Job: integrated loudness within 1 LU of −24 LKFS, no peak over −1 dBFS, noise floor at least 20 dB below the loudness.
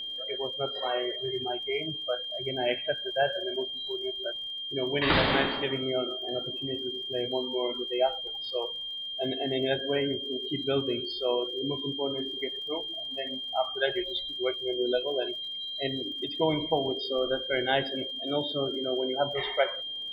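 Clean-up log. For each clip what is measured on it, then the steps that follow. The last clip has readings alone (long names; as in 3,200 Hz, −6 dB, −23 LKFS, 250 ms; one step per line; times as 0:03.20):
crackle rate 52 per second; interfering tone 3,200 Hz; level of the tone −34 dBFS; integrated loudness −29.5 LKFS; sample peak −11.5 dBFS; target loudness −24.0 LKFS
→ click removal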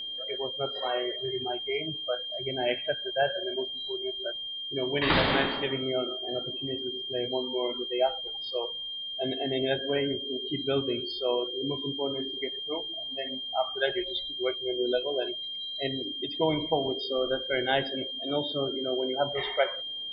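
crackle rate 0.20 per second; interfering tone 3,200 Hz; level of the tone −34 dBFS
→ notch filter 3,200 Hz, Q 30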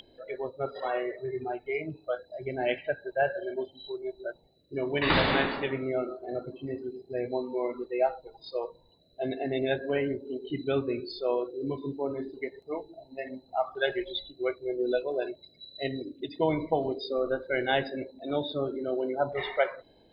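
interfering tone none found; integrated loudness −31.5 LKFS; sample peak −12.0 dBFS; target loudness −24.0 LKFS
→ level +7.5 dB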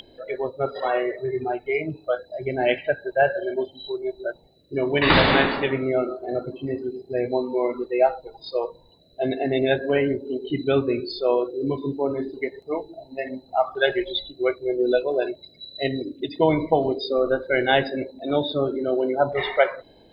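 integrated loudness −24.0 LKFS; sample peak −4.5 dBFS; background noise floor −54 dBFS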